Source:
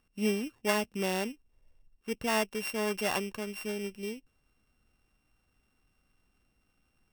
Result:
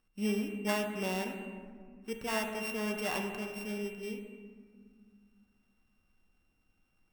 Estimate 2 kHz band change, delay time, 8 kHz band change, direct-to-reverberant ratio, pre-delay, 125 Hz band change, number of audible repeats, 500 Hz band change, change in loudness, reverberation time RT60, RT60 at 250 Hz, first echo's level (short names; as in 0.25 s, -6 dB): -2.5 dB, none, -5.0 dB, 3.0 dB, 4 ms, -1.0 dB, none, -3.5 dB, -3.0 dB, 1.8 s, 3.1 s, none